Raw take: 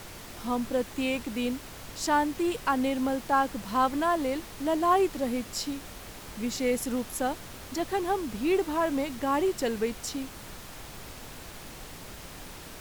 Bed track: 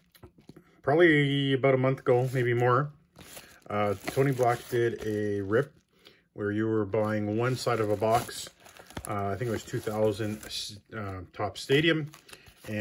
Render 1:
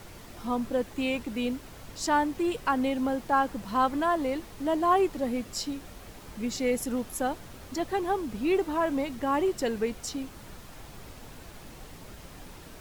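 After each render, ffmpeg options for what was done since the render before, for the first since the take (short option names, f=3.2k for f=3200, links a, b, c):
-af "afftdn=nr=6:nf=-44"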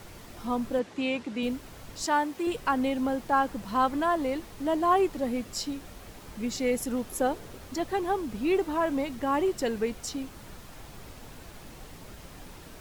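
-filter_complex "[0:a]asettb=1/sr,asplit=3[a][b][c];[a]atrim=end=0.794[d];[b]atrim=start=0.79:end=1.43,asetpts=PTS-STARTPTS,afade=t=in:d=0.004:c=qsin,afade=t=out:st=0.636:d=0.004:c=qsin,highpass=140,lowpass=6.6k[e];[c]atrim=start=1.426[f];[d][e]acrossfade=d=0.004:c1=hsin:c2=qsin[g];[g][f]acrossfade=d=0.004:c1=qsin:c2=hsin,asettb=1/sr,asplit=3[h][i][j];[h]atrim=end=2.064[k];[i]atrim=start=2.06:end=2.47,asetpts=PTS-STARTPTS,afade=t=in:d=0.004:c=qsin,afade=t=out:st=0.406:d=0.004:c=qsin,highpass=f=320:p=1[l];[j]atrim=start=2.466[m];[k][l]acrossfade=d=0.004:c1=hsin:c2=qsin[n];[n][m]acrossfade=d=0.004:c1=qsin:c2=hsin,asettb=1/sr,asplit=3[o][p][q];[o]atrim=end=7.104[r];[p]atrim=start=7.1:end=7.58,asetpts=PTS-STARTPTS,afade=t=in:d=0.004:c=qsin,afade=t=out:st=0.476:d=0.004:c=qsin,equalizer=f=430:t=o:w=0.66:g=8.5[s];[q]atrim=start=7.576[t];[r][s]acrossfade=d=0.004:c1=hsin:c2=qsin[u];[u][t]acrossfade=d=0.004:c1=qsin:c2=hsin"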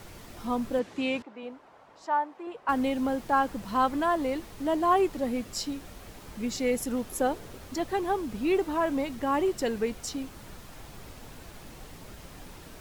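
-filter_complex "[0:a]asettb=1/sr,asplit=3[a][b][c];[a]atrim=end=1.224[d];[b]atrim=start=1.22:end=2.69,asetpts=PTS-STARTPTS,afade=t=in:d=0.004:c=qsin,afade=t=out:st=1.466:d=0.004:c=qsin,bandpass=f=860:t=q:w=1.5[e];[c]atrim=start=2.686[f];[d][e]acrossfade=d=0.004:c1=hsin:c2=qsin[g];[g][f]acrossfade=d=0.004:c1=qsin:c2=hsin"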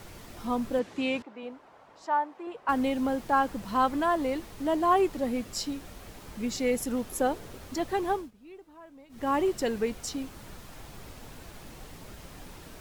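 -filter_complex "[0:a]asplit=3[a][b][c];[a]atrim=end=8.31,asetpts=PTS-STARTPTS,afade=t=out:st=8.12:d=0.19:silence=0.0707946[d];[b]atrim=start=8.31:end=9.09,asetpts=PTS-STARTPTS,volume=-23dB[e];[c]atrim=start=9.09,asetpts=PTS-STARTPTS,afade=t=in:d=0.19:silence=0.0707946[f];[d][e][f]concat=n=3:v=0:a=1"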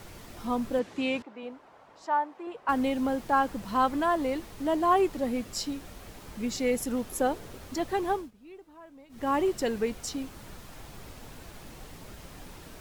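-af anull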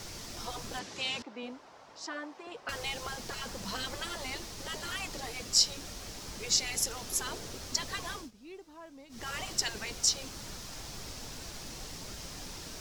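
-af "afftfilt=real='re*lt(hypot(re,im),0.126)':imag='im*lt(hypot(re,im),0.126)':win_size=1024:overlap=0.75,equalizer=f=5.5k:t=o:w=1.2:g=13"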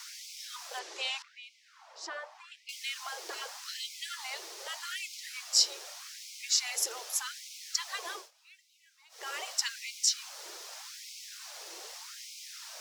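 -af "afftfilt=real='re*gte(b*sr/1024,320*pow(2100/320,0.5+0.5*sin(2*PI*0.83*pts/sr)))':imag='im*gte(b*sr/1024,320*pow(2100/320,0.5+0.5*sin(2*PI*0.83*pts/sr)))':win_size=1024:overlap=0.75"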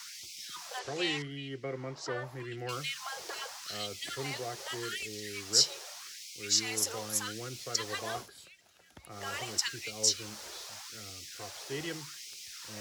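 -filter_complex "[1:a]volume=-15dB[a];[0:a][a]amix=inputs=2:normalize=0"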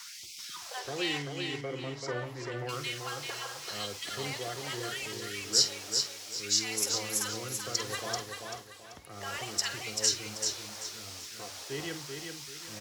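-filter_complex "[0:a]asplit=2[a][b];[b]adelay=49,volume=-12.5dB[c];[a][c]amix=inputs=2:normalize=0,aecho=1:1:387|774|1161|1548:0.562|0.186|0.0612|0.0202"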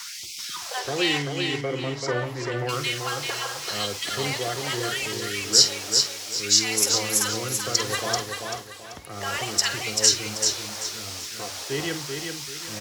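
-af "volume=9dB,alimiter=limit=-3dB:level=0:latency=1"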